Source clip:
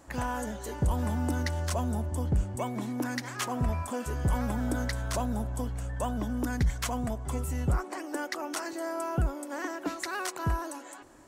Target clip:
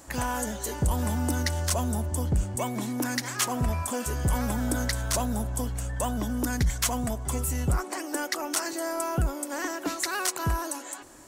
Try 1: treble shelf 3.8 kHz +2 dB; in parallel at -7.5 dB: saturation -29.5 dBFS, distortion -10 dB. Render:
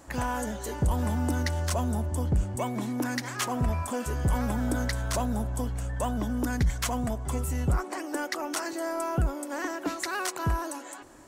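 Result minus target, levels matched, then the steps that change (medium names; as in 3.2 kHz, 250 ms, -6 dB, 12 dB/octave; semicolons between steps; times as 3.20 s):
8 kHz band -5.5 dB
change: treble shelf 3.8 kHz +10.5 dB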